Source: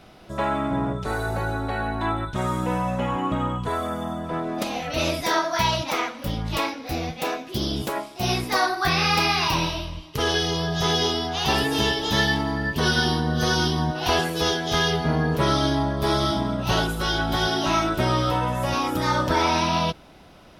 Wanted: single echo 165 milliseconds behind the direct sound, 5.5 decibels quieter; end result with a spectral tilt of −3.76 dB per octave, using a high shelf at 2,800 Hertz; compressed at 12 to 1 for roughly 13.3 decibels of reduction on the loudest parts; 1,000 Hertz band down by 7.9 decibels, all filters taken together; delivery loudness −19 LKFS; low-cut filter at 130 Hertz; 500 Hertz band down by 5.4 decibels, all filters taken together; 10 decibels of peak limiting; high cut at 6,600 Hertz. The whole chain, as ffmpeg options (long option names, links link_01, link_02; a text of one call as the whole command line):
ffmpeg -i in.wav -af "highpass=130,lowpass=6600,equalizer=frequency=500:width_type=o:gain=-4.5,equalizer=frequency=1000:width_type=o:gain=-8.5,highshelf=frequency=2800:gain=-3,acompressor=threshold=-35dB:ratio=12,alimiter=level_in=9dB:limit=-24dB:level=0:latency=1,volume=-9dB,aecho=1:1:165:0.531,volume=21.5dB" out.wav